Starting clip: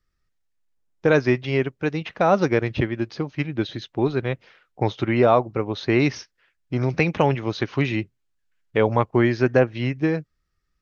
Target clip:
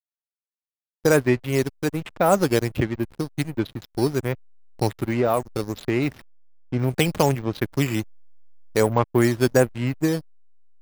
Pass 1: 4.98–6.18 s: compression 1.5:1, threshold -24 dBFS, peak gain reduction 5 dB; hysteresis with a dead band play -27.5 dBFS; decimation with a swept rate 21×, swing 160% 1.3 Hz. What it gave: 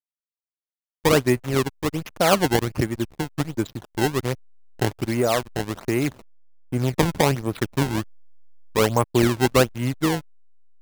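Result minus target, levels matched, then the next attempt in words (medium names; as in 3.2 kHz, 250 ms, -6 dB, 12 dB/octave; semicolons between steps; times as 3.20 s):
decimation with a swept rate: distortion +12 dB
4.98–6.18 s: compression 1.5:1, threshold -24 dBFS, peak gain reduction 5 dB; hysteresis with a dead band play -27.5 dBFS; decimation with a swept rate 5×, swing 160% 1.3 Hz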